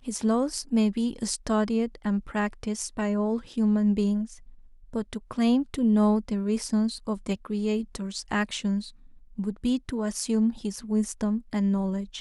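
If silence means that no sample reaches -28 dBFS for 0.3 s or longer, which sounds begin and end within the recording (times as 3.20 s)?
4.95–8.80 s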